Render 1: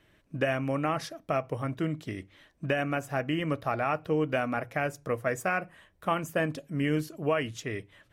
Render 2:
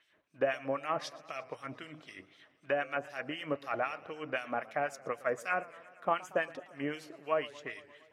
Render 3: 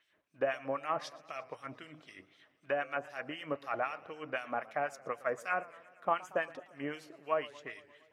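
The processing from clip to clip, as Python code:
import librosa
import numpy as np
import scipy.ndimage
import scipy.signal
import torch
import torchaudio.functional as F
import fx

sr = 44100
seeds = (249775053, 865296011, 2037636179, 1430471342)

y1 = fx.filter_lfo_bandpass(x, sr, shape='sine', hz=3.9, low_hz=580.0, high_hz=5500.0, q=0.94)
y1 = fx.echo_warbled(y1, sr, ms=116, feedback_pct=73, rate_hz=2.8, cents=144, wet_db=-20.5)
y2 = fx.dynamic_eq(y1, sr, hz=1000.0, q=0.97, threshold_db=-45.0, ratio=4.0, max_db=4)
y2 = F.gain(torch.from_numpy(y2), -3.5).numpy()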